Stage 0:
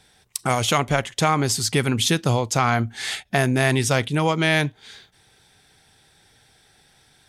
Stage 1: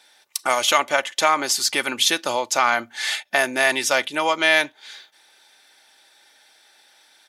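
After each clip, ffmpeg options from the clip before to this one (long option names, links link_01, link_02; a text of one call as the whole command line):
ffmpeg -i in.wav -af "highpass=590,equalizer=frequency=8500:width_type=o:width=0.3:gain=-5.5,aecho=1:1:3.4:0.45,volume=3dB" out.wav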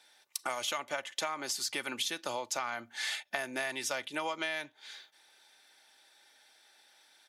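ffmpeg -i in.wav -filter_complex "[0:a]acrossover=split=140[link_01][link_02];[link_02]acompressor=threshold=-23dB:ratio=10[link_03];[link_01][link_03]amix=inputs=2:normalize=0,volume=-8dB" out.wav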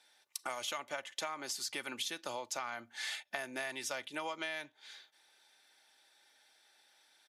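ffmpeg -i in.wav -af "aresample=32000,aresample=44100,volume=-4.5dB" out.wav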